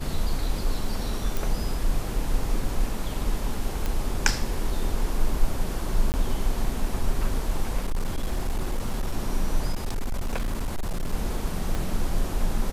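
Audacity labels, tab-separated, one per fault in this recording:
1.370000	1.370000	pop
3.860000	3.860000	pop
6.120000	6.140000	dropout 19 ms
7.830000	9.140000	clipped -21.5 dBFS
9.720000	11.140000	clipped -23 dBFS
11.750000	11.750000	pop

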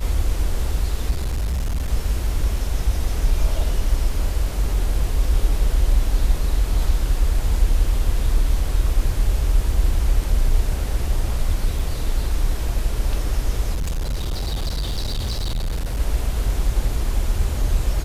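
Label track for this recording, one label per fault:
1.100000	1.890000	clipped -19 dBFS
11.790000	11.790000	dropout 4.4 ms
13.740000	16.000000	clipped -20 dBFS

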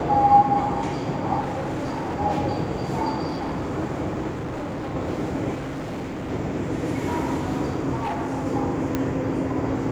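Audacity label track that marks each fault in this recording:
1.400000	2.170000	clipped -24.5 dBFS
3.270000	3.740000	clipped -24.5 dBFS
4.290000	4.960000	clipped -27 dBFS
5.550000	6.310000	clipped -28 dBFS
7.940000	8.470000	clipped -23.5 dBFS
8.950000	8.950000	pop -10 dBFS

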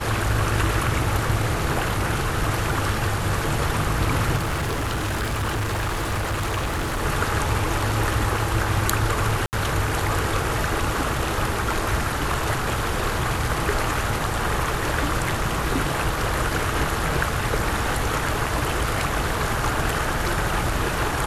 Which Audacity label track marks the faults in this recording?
4.360000	7.020000	clipped -21.5 dBFS
9.460000	9.530000	dropout 69 ms

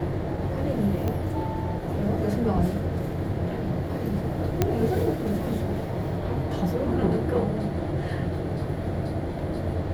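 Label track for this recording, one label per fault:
1.080000	1.080000	pop -16 dBFS
4.620000	4.620000	pop -7 dBFS

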